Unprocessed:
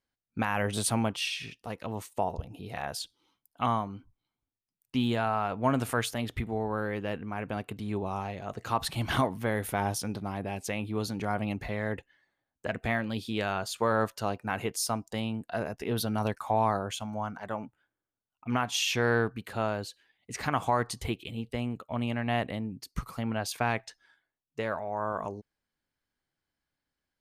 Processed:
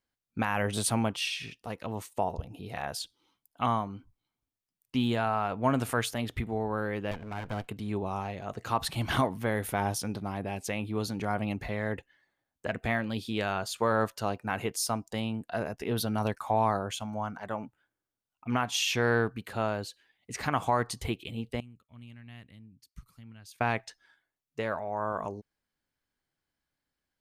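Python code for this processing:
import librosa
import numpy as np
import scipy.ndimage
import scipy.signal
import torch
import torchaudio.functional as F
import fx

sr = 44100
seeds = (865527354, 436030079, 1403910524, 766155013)

y = fx.lower_of_two(x, sr, delay_ms=1.3, at=(7.11, 7.69))
y = fx.tone_stack(y, sr, knobs='6-0-2', at=(21.6, 23.61))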